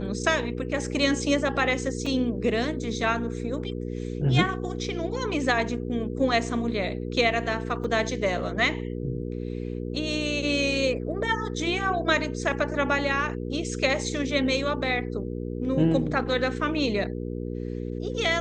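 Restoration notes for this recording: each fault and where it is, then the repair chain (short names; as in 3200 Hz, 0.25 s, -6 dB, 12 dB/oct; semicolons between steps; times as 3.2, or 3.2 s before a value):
hum 60 Hz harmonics 8 -32 dBFS
2.06 gap 3.8 ms
7.84 gap 2.9 ms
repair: de-hum 60 Hz, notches 8; interpolate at 2.06, 3.8 ms; interpolate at 7.84, 2.9 ms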